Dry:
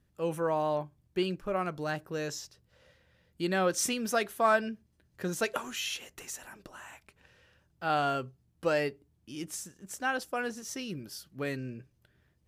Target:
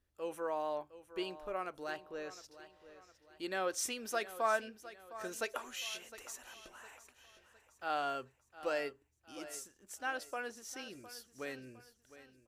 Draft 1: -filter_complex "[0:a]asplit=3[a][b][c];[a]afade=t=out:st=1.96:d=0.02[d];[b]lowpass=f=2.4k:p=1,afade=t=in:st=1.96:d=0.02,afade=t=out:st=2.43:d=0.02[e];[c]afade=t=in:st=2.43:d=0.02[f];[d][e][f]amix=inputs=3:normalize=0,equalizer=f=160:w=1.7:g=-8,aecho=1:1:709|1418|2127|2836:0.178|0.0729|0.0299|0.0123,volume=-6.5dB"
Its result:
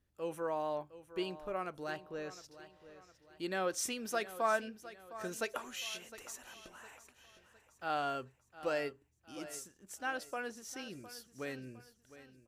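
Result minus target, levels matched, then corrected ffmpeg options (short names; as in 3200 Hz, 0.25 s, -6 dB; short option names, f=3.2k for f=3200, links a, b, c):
125 Hz band +7.5 dB
-filter_complex "[0:a]asplit=3[a][b][c];[a]afade=t=out:st=1.96:d=0.02[d];[b]lowpass=f=2.4k:p=1,afade=t=in:st=1.96:d=0.02,afade=t=out:st=2.43:d=0.02[e];[c]afade=t=in:st=2.43:d=0.02[f];[d][e][f]amix=inputs=3:normalize=0,equalizer=f=160:w=1.7:g=-19,aecho=1:1:709|1418|2127|2836:0.178|0.0729|0.0299|0.0123,volume=-6.5dB"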